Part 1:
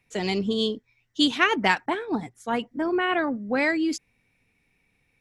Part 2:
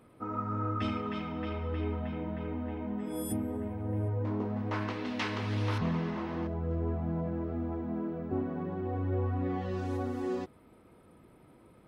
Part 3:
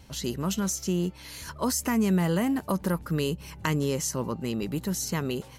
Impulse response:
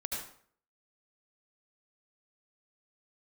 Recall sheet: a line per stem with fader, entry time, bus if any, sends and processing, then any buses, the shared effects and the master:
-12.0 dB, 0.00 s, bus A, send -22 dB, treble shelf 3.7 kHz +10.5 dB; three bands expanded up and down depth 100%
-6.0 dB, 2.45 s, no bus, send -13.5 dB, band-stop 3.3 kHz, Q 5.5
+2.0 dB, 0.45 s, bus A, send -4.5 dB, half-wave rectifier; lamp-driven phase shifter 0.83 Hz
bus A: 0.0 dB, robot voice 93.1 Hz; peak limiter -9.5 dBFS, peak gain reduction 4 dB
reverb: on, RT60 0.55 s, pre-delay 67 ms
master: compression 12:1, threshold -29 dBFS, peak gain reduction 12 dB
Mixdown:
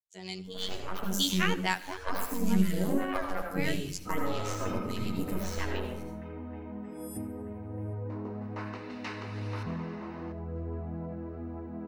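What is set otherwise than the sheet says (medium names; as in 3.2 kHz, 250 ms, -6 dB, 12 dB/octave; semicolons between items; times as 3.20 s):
stem 2: entry 2.45 s -> 3.85 s; master: missing compression 12:1, threshold -29 dBFS, peak gain reduction 12 dB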